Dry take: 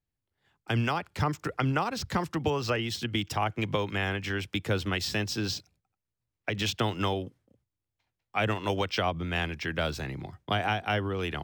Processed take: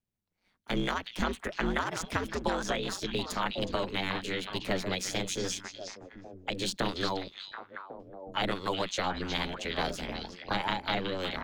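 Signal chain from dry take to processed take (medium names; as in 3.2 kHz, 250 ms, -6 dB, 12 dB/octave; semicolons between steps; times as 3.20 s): repeats whose band climbs or falls 366 ms, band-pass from 3 kHz, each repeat -1.4 oct, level -3 dB; ring modulator 93 Hz; formant shift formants +4 st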